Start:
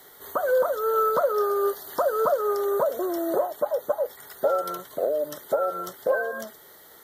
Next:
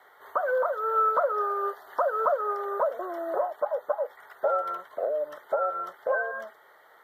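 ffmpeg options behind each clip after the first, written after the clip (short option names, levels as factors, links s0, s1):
-filter_complex "[0:a]acrossover=split=570 2300:gain=0.0891 1 0.0631[s0][s1][s2];[s0][s1][s2]amix=inputs=3:normalize=0,volume=1.26"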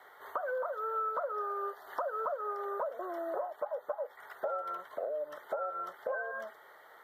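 -af "acompressor=threshold=0.0141:ratio=2.5"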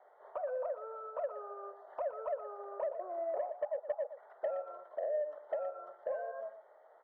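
-af "bandpass=f=620:t=q:w=4:csg=0,asoftclip=type=tanh:threshold=0.0355,aecho=1:1:118:0.251,volume=1.41"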